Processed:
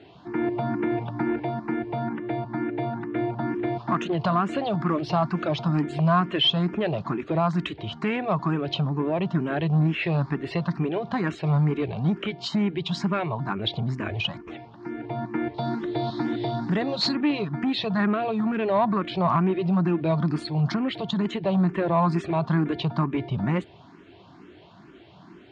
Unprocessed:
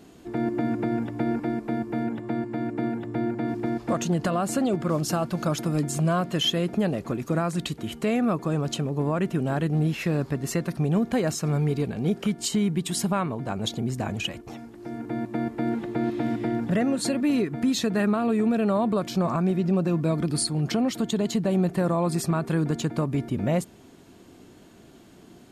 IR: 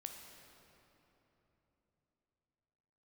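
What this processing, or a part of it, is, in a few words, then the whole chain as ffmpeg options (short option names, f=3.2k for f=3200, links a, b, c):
barber-pole phaser into a guitar amplifier: -filter_complex "[0:a]asettb=1/sr,asplit=3[a][b][c];[a]atrim=end=15.544[d];[b]atrim=start=15.54:end=17.15,asetpts=PTS-STARTPTS,afade=t=in:d=0.004:c=qsin,afade=t=out:st=1.606:d=0.004:c=qsin,highshelf=f=3.2k:t=q:w=3:g=7.5[e];[c]atrim=start=17.146[f];[d][e]acrossfade=d=0.004:c1=hsin:c2=qsin[g];[g][f]acrossfade=d=0.004:c1=qsin:c2=hsin,asplit=2[h][i];[i]afreqshift=2.2[j];[h][j]amix=inputs=2:normalize=1,asoftclip=type=tanh:threshold=-19dB,highpass=89,equalizer=f=240:t=q:w=4:g=-8,equalizer=f=490:t=q:w=4:g=-7,equalizer=f=1k:t=q:w=4:g=5,lowpass=f=4k:w=0.5412,lowpass=f=4k:w=1.3066,volume=6.5dB"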